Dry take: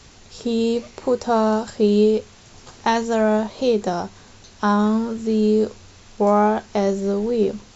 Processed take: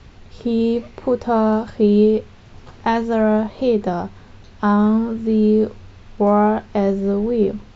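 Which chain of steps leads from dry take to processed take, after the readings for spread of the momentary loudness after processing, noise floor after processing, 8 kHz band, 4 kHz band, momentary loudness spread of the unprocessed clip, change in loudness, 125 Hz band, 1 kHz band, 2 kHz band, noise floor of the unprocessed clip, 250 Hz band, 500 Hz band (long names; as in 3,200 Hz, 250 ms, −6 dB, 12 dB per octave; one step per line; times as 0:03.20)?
8 LU, −44 dBFS, can't be measured, −5.0 dB, 8 LU, +2.0 dB, +4.0 dB, +0.5 dB, −0.5 dB, −47 dBFS, +3.5 dB, +1.0 dB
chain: low-pass filter 3,100 Hz 12 dB per octave
low-shelf EQ 190 Hz +8 dB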